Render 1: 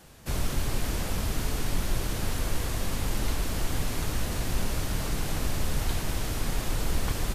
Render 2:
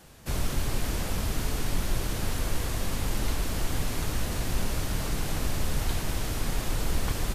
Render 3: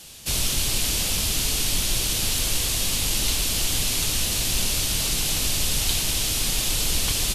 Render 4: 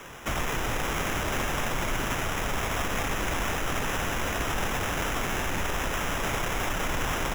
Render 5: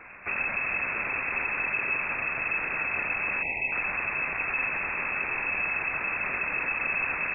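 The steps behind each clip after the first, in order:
no processing that can be heard
flat-topped bell 5,700 Hz +15 dB 2.7 octaves
brickwall limiter −19 dBFS, peak gain reduction 10.5 dB; decimation without filtering 10×
time-frequency box erased 0:03.42–0:03.72, 690–1,600 Hz; high-frequency loss of the air 230 metres; voice inversion scrambler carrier 2,600 Hz; level −1.5 dB

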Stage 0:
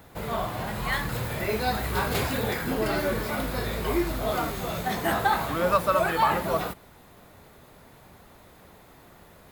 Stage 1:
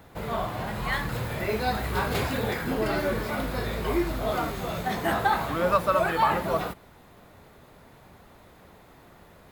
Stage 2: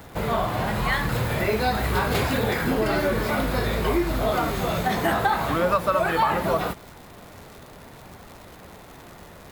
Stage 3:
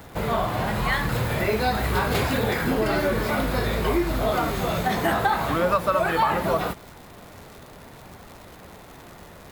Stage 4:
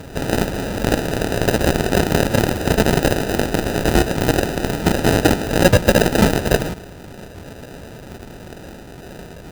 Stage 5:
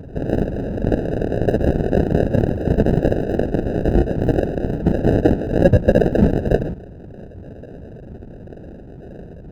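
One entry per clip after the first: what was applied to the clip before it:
high-shelf EQ 5,600 Hz −6 dB
downward compressor 2.5 to 1, threshold −28 dBFS, peak gain reduction 8 dB; surface crackle 210 per second −43 dBFS; level +7.5 dB
no processing that can be heard
sample-rate reduction 1,100 Hz, jitter 0%; harmonic generator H 7 −10 dB, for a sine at −10 dBFS; level +7 dB
spectral envelope exaggerated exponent 2

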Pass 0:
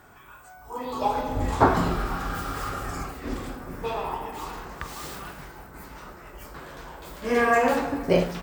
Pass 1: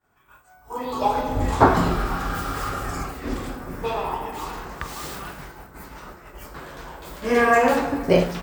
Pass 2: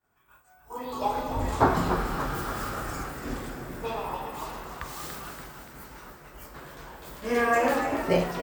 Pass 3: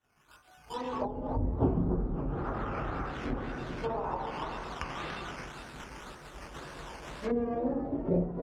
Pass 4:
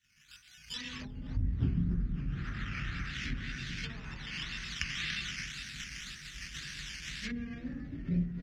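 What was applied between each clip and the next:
downward expander −40 dBFS; level +3.5 dB
high-shelf EQ 7,900 Hz +5 dB; echo with shifted repeats 287 ms, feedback 58%, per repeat +92 Hz, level −9 dB; level −6.5 dB
sample-and-hold swept by an LFO 9×, swing 60% 1.9 Hz; treble cut that deepens with the level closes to 350 Hz, closed at −25 dBFS
drawn EQ curve 190 Hz 0 dB, 470 Hz −24 dB, 900 Hz −27 dB, 1,800 Hz +7 dB, 6,000 Hz +11 dB, 9,100 Hz +1 dB

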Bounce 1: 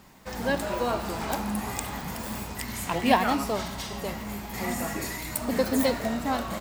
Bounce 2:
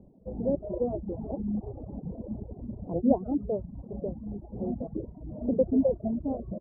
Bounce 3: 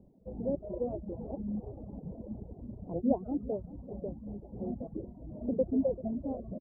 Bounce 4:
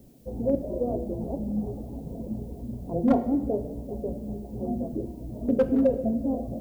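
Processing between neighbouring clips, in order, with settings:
reverb reduction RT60 0.77 s; Butterworth low-pass 590 Hz 36 dB per octave; reverb reduction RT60 0.57 s; level +2.5 dB
repeating echo 389 ms, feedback 49%, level −17 dB; level −5 dB
hard clipping −22.5 dBFS, distortion −18 dB; background noise blue −71 dBFS; on a send at −7 dB: convolution reverb RT60 0.95 s, pre-delay 3 ms; on the sum: level +6 dB

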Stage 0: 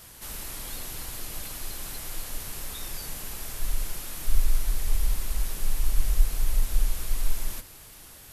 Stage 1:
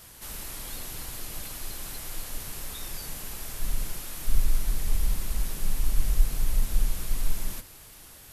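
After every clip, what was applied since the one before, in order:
dynamic equaliser 170 Hz, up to +7 dB, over −46 dBFS, Q 0.86
level −1 dB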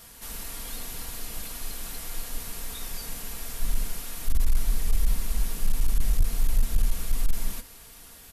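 comb filter 4.3 ms, depth 42%
hard clipping −14 dBFS, distortion −13 dB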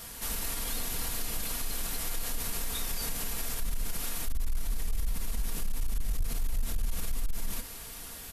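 in parallel at −2.5 dB: downward compressor, threshold −26 dBFS, peak gain reduction 10 dB
on the sum: brickwall limiter −23 dBFS, peak gain reduction 11.5 dB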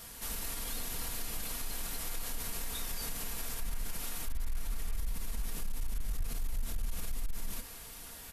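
delay with a band-pass on its return 697 ms, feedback 54%, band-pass 1,300 Hz, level −8 dB
level −4.5 dB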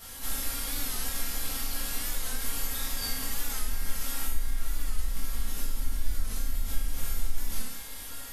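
convolution reverb RT60 0.75 s, pre-delay 4 ms, DRR −7.5 dB
wow of a warped record 45 rpm, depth 100 cents
level −2.5 dB

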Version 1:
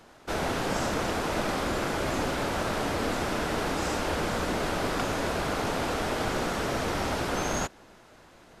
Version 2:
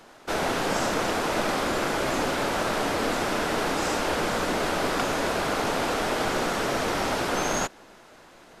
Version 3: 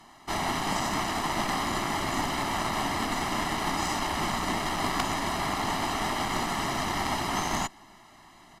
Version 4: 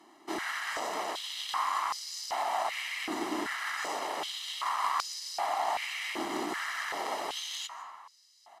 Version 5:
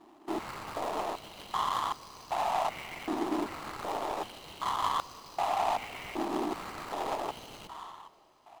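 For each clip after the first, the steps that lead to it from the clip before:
parametric band 60 Hz −9.5 dB 2.7 octaves; level +4 dB
comb filter 1 ms, depth 97%; harmonic generator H 2 −12 dB, 3 −11 dB, 5 −21 dB, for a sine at −9.5 dBFS
convolution reverb RT60 1.7 s, pre-delay 110 ms, DRR 12 dB; high-pass on a step sequencer 2.6 Hz 330–5,000 Hz; level −7.5 dB
running median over 25 samples; dense smooth reverb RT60 4.6 s, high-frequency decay 1×, DRR 18 dB; level +3.5 dB

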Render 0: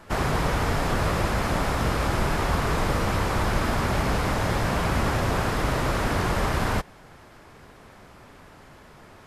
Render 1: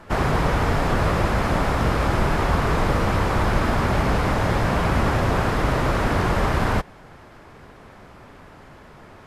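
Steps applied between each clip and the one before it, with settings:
high-shelf EQ 4,000 Hz −8 dB
level +4 dB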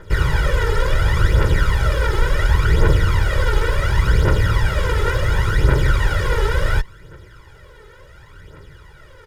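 lower of the sound and its delayed copy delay 0.6 ms
comb filter 2.1 ms, depth 96%
phase shifter 0.7 Hz, delay 2.4 ms, feedback 61%
level −3 dB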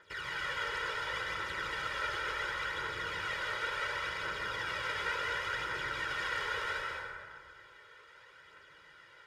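brickwall limiter −11.5 dBFS, peak gain reduction 9.5 dB
resonant band-pass 2,700 Hz, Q 0.74
dense smooth reverb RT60 2.1 s, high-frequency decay 0.45×, pre-delay 120 ms, DRR −1.5 dB
level −8.5 dB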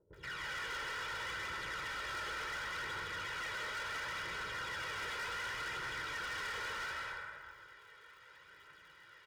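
surface crackle 130 per second −56 dBFS
multiband delay without the direct sound lows, highs 130 ms, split 540 Hz
hard clipping −36.5 dBFS, distortion −10 dB
level −1.5 dB

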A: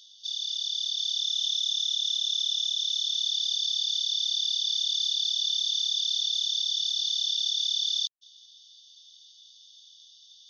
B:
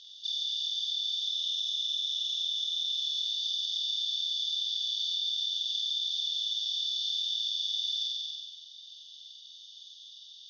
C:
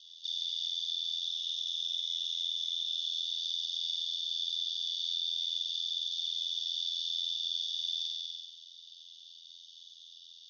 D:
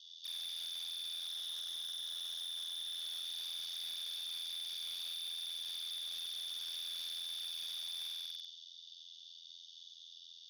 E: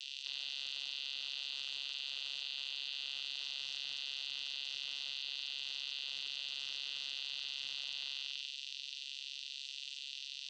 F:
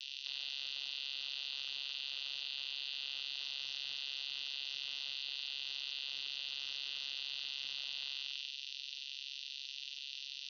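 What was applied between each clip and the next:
low-pass filter 3,800 Hz 12 dB per octave; flutter between parallel walls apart 8 metres, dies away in 1.1 s; downward compressor 4 to 1, threshold −35 dBFS, peak gain reduction 10.5 dB; level +4 dB
ring modulation 42 Hz
hard clipping −38 dBFS, distortion −7 dB; level −2 dB
spectral tilt +2.5 dB per octave; channel vocoder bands 16, saw 138 Hz; envelope flattener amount 70%; level −5 dB
Butterworth low-pass 6,100 Hz 72 dB per octave

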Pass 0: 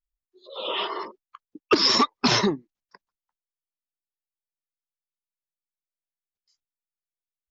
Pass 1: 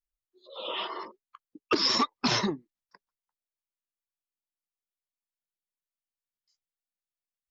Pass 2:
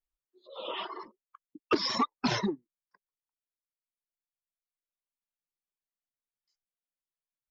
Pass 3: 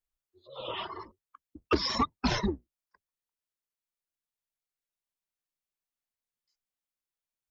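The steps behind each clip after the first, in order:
notch filter 410 Hz, Q 12; level −5.5 dB
reverb reduction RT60 1.8 s; high-shelf EQ 3,400 Hz −9 dB
sub-octave generator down 2 octaves, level −4 dB

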